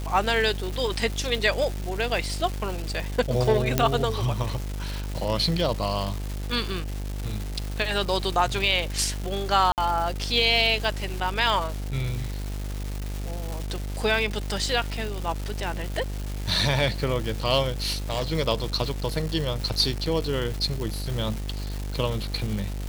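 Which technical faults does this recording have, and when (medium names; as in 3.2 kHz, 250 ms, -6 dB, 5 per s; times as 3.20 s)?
buzz 50 Hz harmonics 18 -31 dBFS
crackle 570 per s -30 dBFS
3.78 s: pop -5 dBFS
9.72–9.78 s: dropout 58 ms
17.82–18.23 s: clipped -21.5 dBFS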